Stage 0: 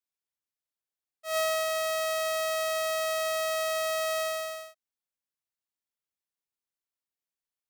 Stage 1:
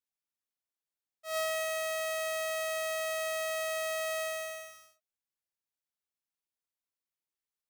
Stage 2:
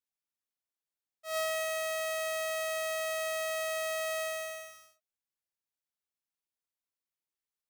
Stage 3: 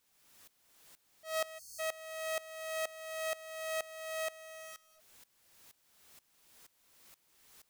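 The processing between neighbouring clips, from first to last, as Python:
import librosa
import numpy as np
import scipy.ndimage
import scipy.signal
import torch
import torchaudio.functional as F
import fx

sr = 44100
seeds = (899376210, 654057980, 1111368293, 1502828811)

y1 = fx.rev_gated(x, sr, seeds[0], gate_ms=270, shape='rising', drr_db=6.0)
y1 = F.gain(torch.from_numpy(y1), -4.5).numpy()
y2 = y1
y3 = y2 + 0.5 * 10.0 ** (-47.5 / 20.0) * np.sign(y2)
y3 = fx.spec_erase(y3, sr, start_s=1.58, length_s=0.21, low_hz=380.0, high_hz=4200.0)
y3 = fx.tremolo_decay(y3, sr, direction='swelling', hz=2.1, depth_db=20)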